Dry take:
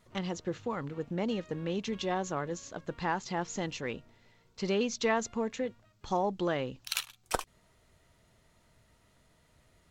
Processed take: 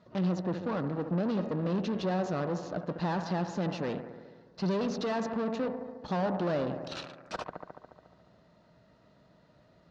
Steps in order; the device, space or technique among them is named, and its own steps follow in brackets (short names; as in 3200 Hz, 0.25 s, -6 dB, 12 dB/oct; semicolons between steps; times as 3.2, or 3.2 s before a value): analogue delay pedal into a guitar amplifier (analogue delay 71 ms, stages 1024, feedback 74%, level -14 dB; tube stage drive 39 dB, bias 0.8; speaker cabinet 82–4600 Hz, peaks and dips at 90 Hz -7 dB, 180 Hz +7 dB, 280 Hz +4 dB, 600 Hz +7 dB, 2200 Hz -9 dB, 3200 Hz -7 dB); gain +8.5 dB